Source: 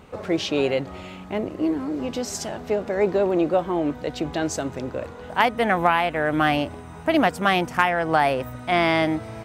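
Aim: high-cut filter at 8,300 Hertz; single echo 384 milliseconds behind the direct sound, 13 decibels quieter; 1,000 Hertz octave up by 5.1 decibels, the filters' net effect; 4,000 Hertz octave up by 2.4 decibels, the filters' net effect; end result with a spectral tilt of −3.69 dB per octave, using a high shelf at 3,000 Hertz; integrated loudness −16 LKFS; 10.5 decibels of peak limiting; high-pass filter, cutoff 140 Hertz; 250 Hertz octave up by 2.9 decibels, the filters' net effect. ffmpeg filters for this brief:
ffmpeg -i in.wav -af "highpass=140,lowpass=8300,equalizer=frequency=250:width_type=o:gain=4,equalizer=frequency=1000:width_type=o:gain=7,highshelf=frequency=3000:gain=-6,equalizer=frequency=4000:width_type=o:gain=7.5,alimiter=limit=-11dB:level=0:latency=1,aecho=1:1:384:0.224,volume=6.5dB" out.wav

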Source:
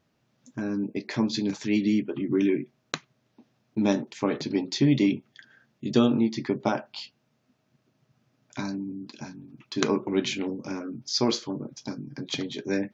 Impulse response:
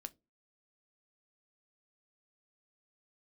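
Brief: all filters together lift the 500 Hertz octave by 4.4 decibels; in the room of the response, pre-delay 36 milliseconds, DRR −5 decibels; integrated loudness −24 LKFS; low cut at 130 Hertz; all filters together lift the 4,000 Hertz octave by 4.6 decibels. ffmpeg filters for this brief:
-filter_complex "[0:a]highpass=130,equalizer=frequency=500:width_type=o:gain=6,equalizer=frequency=4000:width_type=o:gain=5.5,asplit=2[link_01][link_02];[1:a]atrim=start_sample=2205,adelay=36[link_03];[link_02][link_03]afir=irnorm=-1:irlink=0,volume=10dB[link_04];[link_01][link_04]amix=inputs=2:normalize=0,volume=-5dB"

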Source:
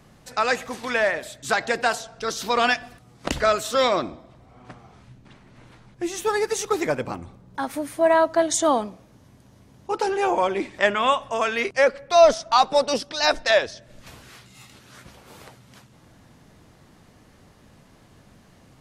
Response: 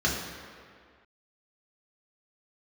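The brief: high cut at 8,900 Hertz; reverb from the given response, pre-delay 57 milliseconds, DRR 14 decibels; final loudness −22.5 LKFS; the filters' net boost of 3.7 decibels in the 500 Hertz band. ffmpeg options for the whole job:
-filter_complex "[0:a]lowpass=8900,equalizer=frequency=500:width_type=o:gain=5,asplit=2[link_01][link_02];[1:a]atrim=start_sample=2205,adelay=57[link_03];[link_02][link_03]afir=irnorm=-1:irlink=0,volume=-26.5dB[link_04];[link_01][link_04]amix=inputs=2:normalize=0,volume=-3dB"

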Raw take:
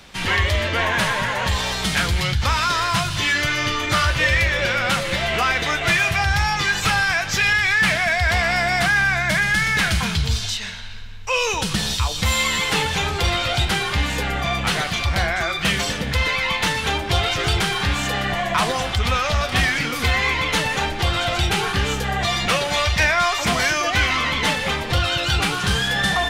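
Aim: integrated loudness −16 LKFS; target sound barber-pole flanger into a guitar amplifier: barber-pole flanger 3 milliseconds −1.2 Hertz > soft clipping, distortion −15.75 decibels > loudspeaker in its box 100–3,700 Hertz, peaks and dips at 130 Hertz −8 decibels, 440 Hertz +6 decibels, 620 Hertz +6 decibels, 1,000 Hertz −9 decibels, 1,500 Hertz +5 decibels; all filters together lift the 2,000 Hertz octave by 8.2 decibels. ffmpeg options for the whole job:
ffmpeg -i in.wav -filter_complex "[0:a]equalizer=frequency=2000:width_type=o:gain=8,asplit=2[link_01][link_02];[link_02]adelay=3,afreqshift=-1.2[link_03];[link_01][link_03]amix=inputs=2:normalize=1,asoftclip=threshold=-13dB,highpass=100,equalizer=frequency=130:width_type=q:width=4:gain=-8,equalizer=frequency=440:width_type=q:width=4:gain=6,equalizer=frequency=620:width_type=q:width=4:gain=6,equalizer=frequency=1000:width_type=q:width=4:gain=-9,equalizer=frequency=1500:width_type=q:width=4:gain=5,lowpass=frequency=3700:width=0.5412,lowpass=frequency=3700:width=1.3066,volume=3dB" out.wav

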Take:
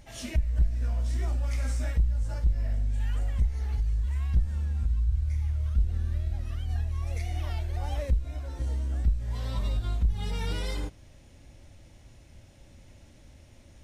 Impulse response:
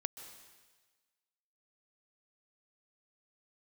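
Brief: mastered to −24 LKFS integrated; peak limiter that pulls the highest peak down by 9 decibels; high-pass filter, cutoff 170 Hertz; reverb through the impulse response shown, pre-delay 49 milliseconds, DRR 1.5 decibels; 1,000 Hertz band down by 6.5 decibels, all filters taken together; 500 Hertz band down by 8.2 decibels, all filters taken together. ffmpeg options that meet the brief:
-filter_complex "[0:a]highpass=170,equalizer=frequency=500:width_type=o:gain=-8.5,equalizer=frequency=1000:width_type=o:gain=-5.5,alimiter=level_in=13dB:limit=-24dB:level=0:latency=1,volume=-13dB,asplit=2[link_01][link_02];[1:a]atrim=start_sample=2205,adelay=49[link_03];[link_02][link_03]afir=irnorm=-1:irlink=0,volume=-0.5dB[link_04];[link_01][link_04]amix=inputs=2:normalize=0,volume=20dB"

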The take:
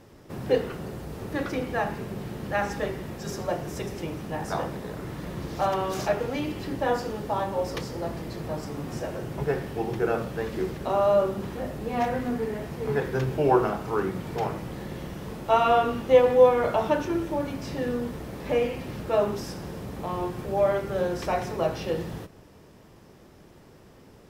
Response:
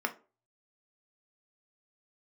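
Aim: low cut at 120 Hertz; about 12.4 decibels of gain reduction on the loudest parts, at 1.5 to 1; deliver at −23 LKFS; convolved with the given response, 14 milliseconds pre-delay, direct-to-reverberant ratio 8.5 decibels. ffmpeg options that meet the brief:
-filter_complex "[0:a]highpass=120,acompressor=threshold=-47dB:ratio=1.5,asplit=2[link_01][link_02];[1:a]atrim=start_sample=2205,adelay=14[link_03];[link_02][link_03]afir=irnorm=-1:irlink=0,volume=-15dB[link_04];[link_01][link_04]amix=inputs=2:normalize=0,volume=13.5dB"

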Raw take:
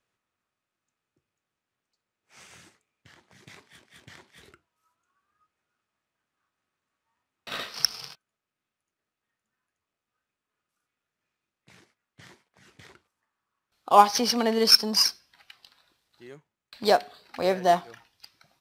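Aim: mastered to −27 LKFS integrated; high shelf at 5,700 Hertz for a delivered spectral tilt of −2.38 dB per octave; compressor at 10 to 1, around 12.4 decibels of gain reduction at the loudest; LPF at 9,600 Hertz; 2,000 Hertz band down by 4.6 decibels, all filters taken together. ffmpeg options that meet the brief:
ffmpeg -i in.wav -af "lowpass=9600,equalizer=frequency=2000:width_type=o:gain=-7,highshelf=frequency=5700:gain=7,acompressor=threshold=-22dB:ratio=10,volume=1.5dB" out.wav

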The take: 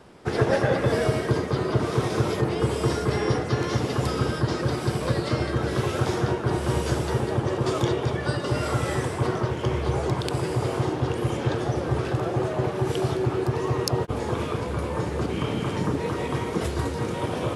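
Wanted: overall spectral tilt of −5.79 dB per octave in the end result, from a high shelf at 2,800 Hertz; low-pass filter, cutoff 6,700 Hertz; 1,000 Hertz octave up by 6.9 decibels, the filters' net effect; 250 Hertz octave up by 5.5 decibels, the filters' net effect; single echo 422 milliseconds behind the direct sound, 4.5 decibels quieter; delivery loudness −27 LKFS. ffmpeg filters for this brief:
ffmpeg -i in.wav -af "lowpass=6700,equalizer=frequency=250:width_type=o:gain=7.5,equalizer=frequency=1000:width_type=o:gain=7.5,highshelf=frequency=2800:gain=5,aecho=1:1:422:0.596,volume=-6.5dB" out.wav

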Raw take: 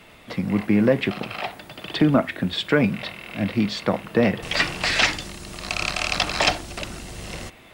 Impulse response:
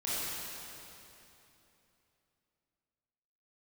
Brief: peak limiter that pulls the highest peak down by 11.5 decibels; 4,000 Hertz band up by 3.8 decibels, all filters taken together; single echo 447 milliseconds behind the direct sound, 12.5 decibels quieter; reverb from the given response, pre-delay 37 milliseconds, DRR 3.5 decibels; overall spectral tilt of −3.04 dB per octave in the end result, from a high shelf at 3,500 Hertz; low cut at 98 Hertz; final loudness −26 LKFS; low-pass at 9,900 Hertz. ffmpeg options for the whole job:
-filter_complex "[0:a]highpass=98,lowpass=9900,highshelf=frequency=3500:gain=-5.5,equalizer=frequency=4000:width_type=o:gain=8.5,alimiter=limit=-14dB:level=0:latency=1,aecho=1:1:447:0.237,asplit=2[link_01][link_02];[1:a]atrim=start_sample=2205,adelay=37[link_03];[link_02][link_03]afir=irnorm=-1:irlink=0,volume=-10dB[link_04];[link_01][link_04]amix=inputs=2:normalize=0,volume=-2dB"

